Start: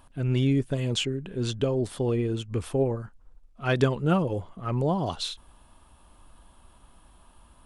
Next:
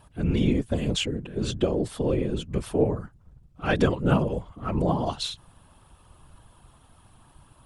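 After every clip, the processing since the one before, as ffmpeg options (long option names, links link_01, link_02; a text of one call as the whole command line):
ffmpeg -i in.wav -af "afftfilt=real='hypot(re,im)*cos(2*PI*random(0))':imag='hypot(re,im)*sin(2*PI*random(1))':win_size=512:overlap=0.75,volume=7dB" out.wav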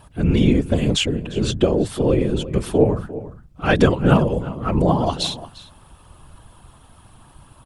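ffmpeg -i in.wav -filter_complex "[0:a]asplit=2[link_01][link_02];[link_02]adelay=349.9,volume=-15dB,highshelf=frequency=4000:gain=-7.87[link_03];[link_01][link_03]amix=inputs=2:normalize=0,volume=7dB" out.wav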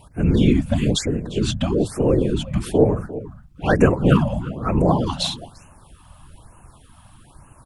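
ffmpeg -i in.wav -af "afftfilt=real='re*(1-between(b*sr/1024,360*pow(4300/360,0.5+0.5*sin(2*PI*1.1*pts/sr))/1.41,360*pow(4300/360,0.5+0.5*sin(2*PI*1.1*pts/sr))*1.41))':imag='im*(1-between(b*sr/1024,360*pow(4300/360,0.5+0.5*sin(2*PI*1.1*pts/sr))/1.41,360*pow(4300/360,0.5+0.5*sin(2*PI*1.1*pts/sr))*1.41))':win_size=1024:overlap=0.75" out.wav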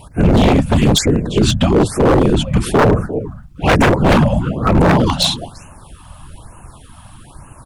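ffmpeg -i in.wav -af "aeval=exprs='0.2*(abs(mod(val(0)/0.2+3,4)-2)-1)':channel_layout=same,volume=9dB" out.wav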